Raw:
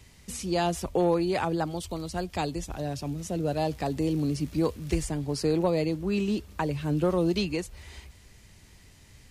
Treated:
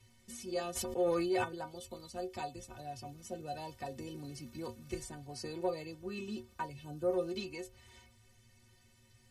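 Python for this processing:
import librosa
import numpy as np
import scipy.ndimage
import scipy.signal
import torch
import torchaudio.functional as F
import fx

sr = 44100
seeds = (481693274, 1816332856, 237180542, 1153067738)

y = fx.peak_eq(x, sr, hz=fx.line((6.66, 870.0), (7.12, 3700.0)), db=-14.5, octaves=0.99, at=(6.66, 7.12), fade=0.02)
y = fx.stiff_resonator(y, sr, f0_hz=110.0, decay_s=0.31, stiffness=0.03)
y = fx.sustainer(y, sr, db_per_s=23.0, at=(0.75, 1.43), fade=0.02)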